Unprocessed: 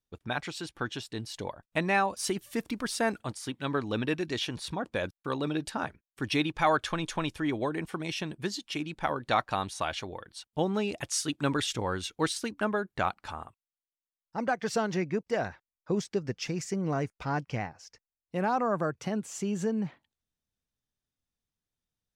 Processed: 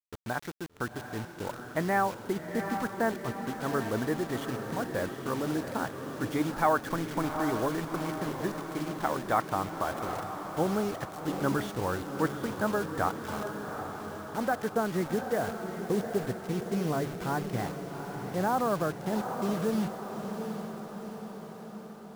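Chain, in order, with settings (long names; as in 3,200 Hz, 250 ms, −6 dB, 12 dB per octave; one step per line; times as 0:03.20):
Savitzky-Golay smoothing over 41 samples
hum removal 143.4 Hz, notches 2
bit reduction 7 bits
feedback delay with all-pass diffusion 773 ms, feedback 60%, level −7 dB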